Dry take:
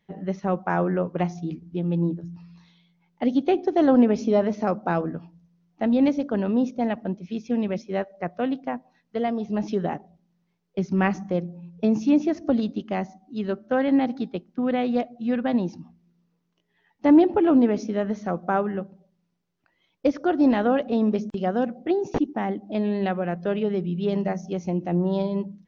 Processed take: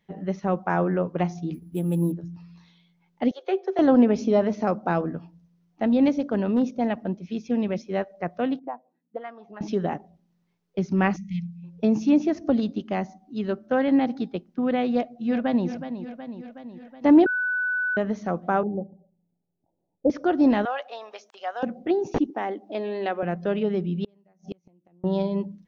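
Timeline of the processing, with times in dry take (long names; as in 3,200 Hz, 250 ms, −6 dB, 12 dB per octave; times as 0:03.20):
0:01.54–0:02.12: bad sample-rate conversion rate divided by 4×, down none, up hold
0:03.31–0:03.79: Chebyshev high-pass with heavy ripple 370 Hz, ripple 6 dB
0:06.29–0:06.75: hard clipping −15 dBFS
0:08.59–0:09.61: envelope filter 220–1,400 Hz, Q 2.4, up, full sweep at −22 dBFS
0:11.16–0:11.64: linear-phase brick-wall band-stop 220–1,900 Hz
0:14.94–0:15.67: delay throw 370 ms, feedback 65%, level −10.5 dB
0:17.26–0:17.97: beep over 1,490 Hz −22.5 dBFS
0:18.63–0:20.10: Chebyshev low-pass filter 860 Hz, order 6
0:20.65–0:21.63: high-pass filter 710 Hz 24 dB per octave
0:22.30–0:23.23: high-pass filter 290 Hz 24 dB per octave
0:24.04–0:25.04: gate with flip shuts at −21 dBFS, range −36 dB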